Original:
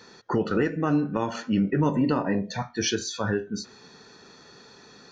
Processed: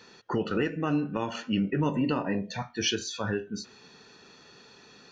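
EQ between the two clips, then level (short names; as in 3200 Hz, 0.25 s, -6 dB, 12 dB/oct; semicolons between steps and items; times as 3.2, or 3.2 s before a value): bell 2800 Hz +9.5 dB 0.4 oct; -4.0 dB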